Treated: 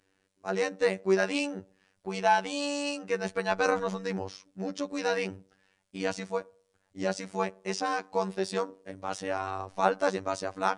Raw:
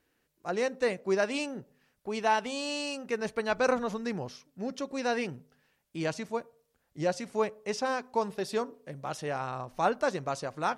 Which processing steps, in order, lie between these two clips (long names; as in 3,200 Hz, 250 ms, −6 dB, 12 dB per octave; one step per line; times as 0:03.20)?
phases set to zero 95.7 Hz
level +4 dB
AAC 96 kbit/s 22,050 Hz